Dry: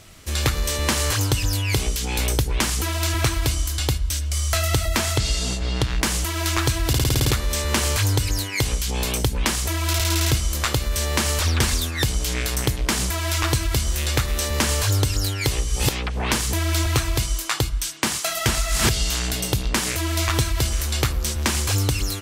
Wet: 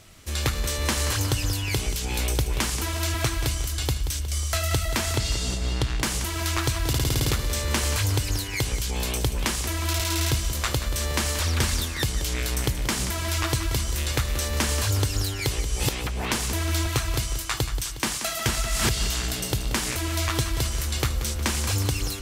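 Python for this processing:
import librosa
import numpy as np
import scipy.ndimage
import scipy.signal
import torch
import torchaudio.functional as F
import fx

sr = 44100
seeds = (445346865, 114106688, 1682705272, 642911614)

y = fx.echo_feedback(x, sr, ms=181, feedback_pct=56, wet_db=-11.0)
y = F.gain(torch.from_numpy(y), -4.0).numpy()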